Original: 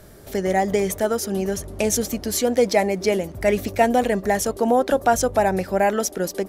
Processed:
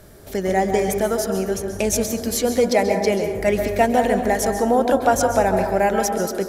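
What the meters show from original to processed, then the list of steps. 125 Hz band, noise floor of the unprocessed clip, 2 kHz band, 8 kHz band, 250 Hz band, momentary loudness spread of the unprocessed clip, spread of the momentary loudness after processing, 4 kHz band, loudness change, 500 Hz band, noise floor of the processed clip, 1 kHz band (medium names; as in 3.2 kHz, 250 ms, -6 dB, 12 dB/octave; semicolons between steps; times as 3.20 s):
+1.5 dB, -41 dBFS, +1.0 dB, +0.5 dB, +1.5 dB, 6 LU, 5 LU, +0.5 dB, +1.5 dB, +1.5 dB, -36 dBFS, +1.5 dB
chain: plate-style reverb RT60 1.2 s, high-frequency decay 0.35×, pre-delay 120 ms, DRR 5 dB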